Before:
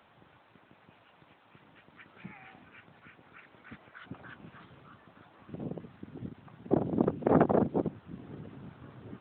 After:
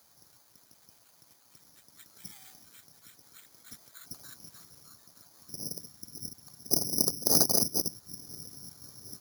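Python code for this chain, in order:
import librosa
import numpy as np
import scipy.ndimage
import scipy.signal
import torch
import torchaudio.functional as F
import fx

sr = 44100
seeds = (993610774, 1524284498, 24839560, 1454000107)

y = (np.kron(scipy.signal.resample_poly(x, 1, 8), np.eye(8)[0]) * 8)[:len(x)]
y = fx.low_shelf(y, sr, hz=68.0, db=8.0)
y = y * librosa.db_to_amplitude(-9.0)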